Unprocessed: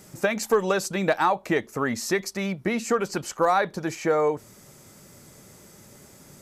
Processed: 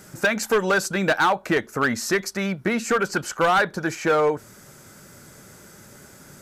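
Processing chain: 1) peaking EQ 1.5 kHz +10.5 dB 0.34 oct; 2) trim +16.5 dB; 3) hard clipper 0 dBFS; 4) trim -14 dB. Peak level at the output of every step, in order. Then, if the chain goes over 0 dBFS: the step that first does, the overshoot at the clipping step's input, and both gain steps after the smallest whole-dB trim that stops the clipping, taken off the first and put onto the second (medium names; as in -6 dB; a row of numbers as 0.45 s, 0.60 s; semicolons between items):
-7.0 dBFS, +9.5 dBFS, 0.0 dBFS, -14.0 dBFS; step 2, 9.5 dB; step 2 +6.5 dB, step 4 -4 dB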